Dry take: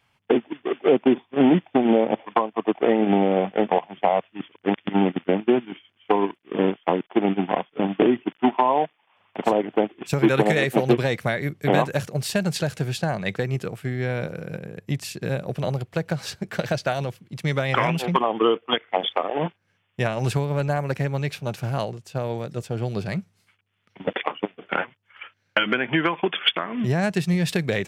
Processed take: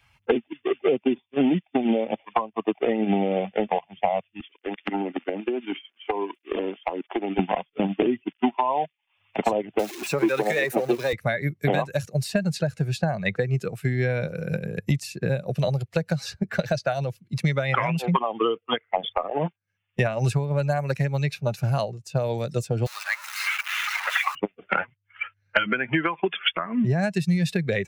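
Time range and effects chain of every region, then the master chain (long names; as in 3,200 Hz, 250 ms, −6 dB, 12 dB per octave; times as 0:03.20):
0:04.40–0:07.39: high-pass filter 240 Hz 24 dB per octave + downward compressor 10 to 1, threshold −30 dBFS
0:09.79–0:11.13: converter with a step at zero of −25 dBFS + high-pass filter 270 Hz
0:22.86–0:24.35: converter with a step at zero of −24.5 dBFS + high-pass filter 1,000 Hz 24 dB per octave
whole clip: spectral dynamics exaggerated over time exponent 1.5; multiband upward and downward compressor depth 100%; level +1.5 dB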